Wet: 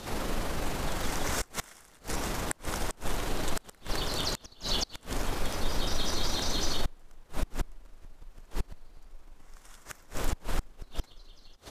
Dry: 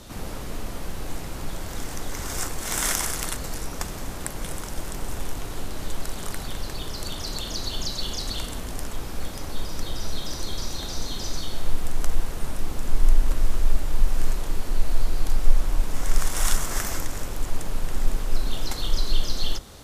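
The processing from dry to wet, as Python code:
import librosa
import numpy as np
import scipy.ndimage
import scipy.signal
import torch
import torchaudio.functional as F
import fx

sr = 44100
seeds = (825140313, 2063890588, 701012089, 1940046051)

p1 = fx.low_shelf(x, sr, hz=230.0, db=-7.0)
p2 = fx.stretch_grains(p1, sr, factor=0.59, grain_ms=84.0)
p3 = fx.gate_flip(p2, sr, shuts_db=-20.0, range_db=-29)
p4 = 10.0 ** (-24.5 / 20.0) * np.tanh(p3 / 10.0 ** (-24.5 / 20.0))
p5 = p3 + F.gain(torch.from_numpy(p4), -6.0).numpy()
p6 = fx.high_shelf(p5, sr, hz=5800.0, db=-7.0)
y = F.gain(torch.from_numpy(p6), 2.5).numpy()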